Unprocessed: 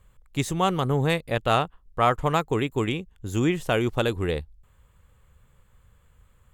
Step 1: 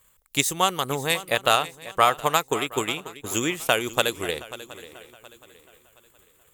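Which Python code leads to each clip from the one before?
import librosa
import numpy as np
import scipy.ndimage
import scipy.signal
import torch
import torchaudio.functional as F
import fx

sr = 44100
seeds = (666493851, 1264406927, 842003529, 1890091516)

y = fx.transient(x, sr, attack_db=7, sustain_db=-1)
y = fx.riaa(y, sr, side='recording')
y = fx.echo_swing(y, sr, ms=720, ratio=3, feedback_pct=31, wet_db=-16)
y = y * librosa.db_to_amplitude(-1.0)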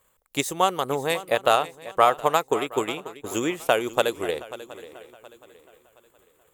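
y = fx.peak_eq(x, sr, hz=550.0, db=10.0, octaves=2.7)
y = y * librosa.db_to_amplitude(-6.5)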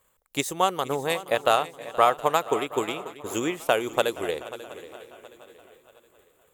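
y = fx.echo_feedback(x, sr, ms=473, feedback_pct=54, wet_db=-19)
y = y * librosa.db_to_amplitude(-1.5)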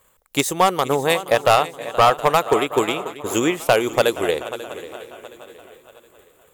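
y = np.clip(x, -10.0 ** (-15.5 / 20.0), 10.0 ** (-15.5 / 20.0))
y = y * librosa.db_to_amplitude(8.0)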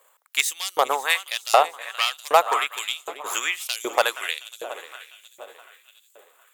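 y = fx.filter_lfo_highpass(x, sr, shape='saw_up', hz=1.3, low_hz=510.0, high_hz=6100.0, q=1.5)
y = y * librosa.db_to_amplitude(-1.0)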